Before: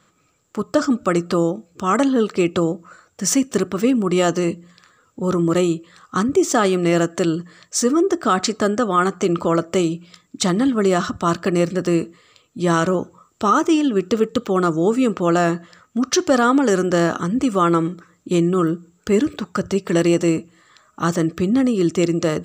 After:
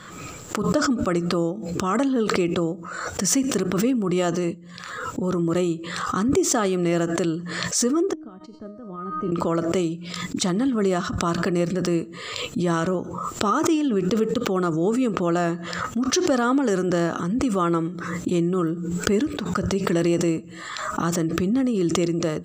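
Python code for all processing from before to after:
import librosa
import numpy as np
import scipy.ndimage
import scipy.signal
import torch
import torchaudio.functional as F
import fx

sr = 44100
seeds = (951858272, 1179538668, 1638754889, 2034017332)

y = fx.chain(x, sr, fx.tilt_eq(slope=-4.5),
    fx.comb_fb(f0_hz=310.0, decay_s=1.0, harmonics='all', damping=0.0, mix_pct=90),
    fx.upward_expand(threshold_db=-47.0, expansion=2.5), at=(8.13, 9.32))
y = fx.noise_reduce_blind(y, sr, reduce_db=8)
y = fx.low_shelf(y, sr, hz=440.0, db=3.0)
y = fx.pre_swell(y, sr, db_per_s=34.0)
y = F.gain(torch.from_numpy(y), -7.0).numpy()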